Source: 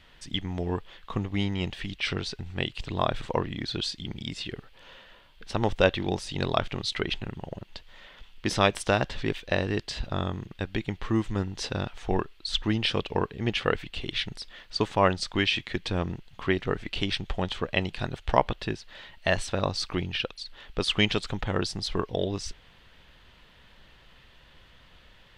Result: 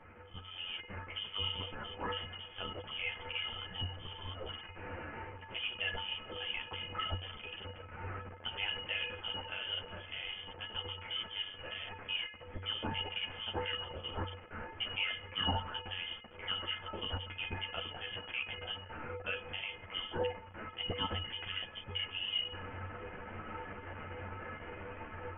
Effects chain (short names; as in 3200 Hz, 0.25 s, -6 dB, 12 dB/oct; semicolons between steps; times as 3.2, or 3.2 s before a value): switching spikes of -17 dBFS; HPF 170 Hz 12 dB/oct; limiter -14 dBFS, peak gain reduction 10.5 dB; AGC gain up to 11 dB; resonator 400 Hz, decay 0.53 s, mix 90%; inverted band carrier 3300 Hz; ensemble effect; gain +1 dB